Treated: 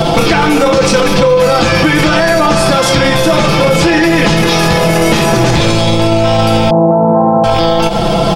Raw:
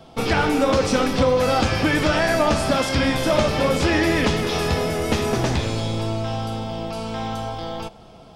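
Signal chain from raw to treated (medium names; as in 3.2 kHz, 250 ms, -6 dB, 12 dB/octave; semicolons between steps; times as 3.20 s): rattle on loud lows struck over -30 dBFS, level -31 dBFS; 6.70–7.44 s: elliptic band-pass 150–970 Hz, stop band 50 dB; comb 5.9 ms, depth 74%; compression 8:1, threshold -30 dBFS, peak gain reduction 18.5 dB; hard clipper -24 dBFS, distortion -31 dB; loudness maximiser +34.5 dB; trim -1 dB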